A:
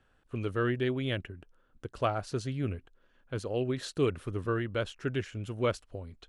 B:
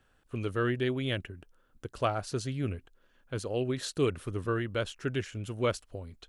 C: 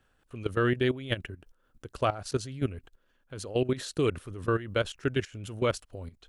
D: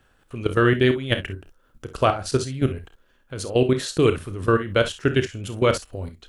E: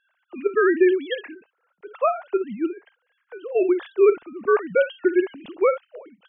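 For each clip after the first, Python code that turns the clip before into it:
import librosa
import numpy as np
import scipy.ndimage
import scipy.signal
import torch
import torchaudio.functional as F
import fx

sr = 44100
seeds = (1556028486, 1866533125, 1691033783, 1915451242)

y1 = fx.high_shelf(x, sr, hz=5200.0, db=7.5)
y2 = fx.level_steps(y1, sr, step_db=15)
y2 = y2 * 10.0 ** (6.0 / 20.0)
y3 = fx.room_early_taps(y2, sr, ms=(31, 52, 65), db=(-12.0, -13.5, -15.0))
y3 = y3 * 10.0 ** (8.0 / 20.0)
y4 = fx.sine_speech(y3, sr)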